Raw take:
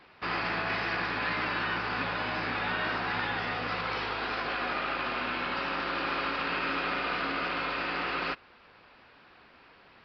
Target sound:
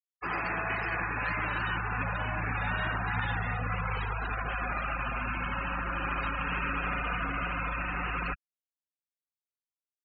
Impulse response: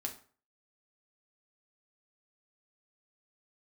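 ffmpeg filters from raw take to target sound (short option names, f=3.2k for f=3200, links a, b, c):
-af "asubboost=boost=9:cutoff=110,afftfilt=real='re*gte(hypot(re,im),0.0355)':imag='im*gte(hypot(re,im),0.0355)':win_size=1024:overlap=0.75"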